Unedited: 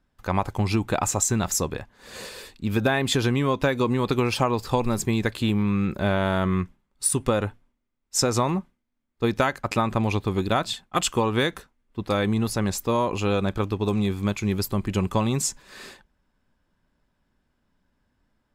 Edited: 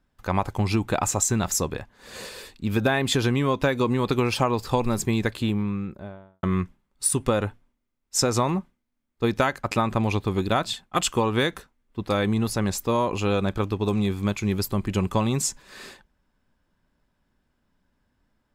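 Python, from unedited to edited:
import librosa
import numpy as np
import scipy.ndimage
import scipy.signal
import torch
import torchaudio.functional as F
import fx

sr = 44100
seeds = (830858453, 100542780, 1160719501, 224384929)

y = fx.studio_fade_out(x, sr, start_s=5.17, length_s=1.26)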